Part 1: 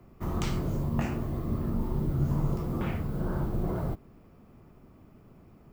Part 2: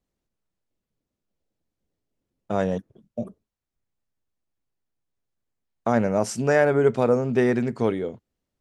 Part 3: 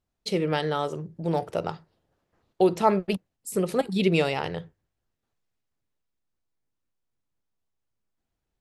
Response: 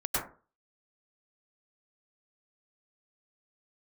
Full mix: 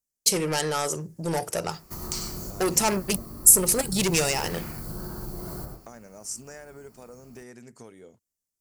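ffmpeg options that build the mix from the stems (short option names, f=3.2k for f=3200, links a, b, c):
-filter_complex "[0:a]equalizer=f=4.4k:w=3.8:g=14,acompressor=threshold=-32dB:ratio=5,adelay=1700,volume=-7.5dB,asplit=2[a][b];[b]volume=-7dB[c];[1:a]acompressor=threshold=-26dB:ratio=6,volume=-17.5dB,asplit=2[d][e];[2:a]agate=range=-33dB:threshold=-51dB:ratio=3:detection=peak,asoftclip=type=tanh:threshold=-22dB,volume=0.5dB[f];[e]apad=whole_len=327601[g];[a][g]sidechaincompress=threshold=-59dB:ratio=8:attack=16:release=833[h];[3:a]atrim=start_sample=2205[i];[c][i]afir=irnorm=-1:irlink=0[j];[h][d][f][j]amix=inputs=4:normalize=0,equalizer=f=3k:w=0.38:g=6,aexciter=amount=12.6:drive=2.7:freq=5.4k"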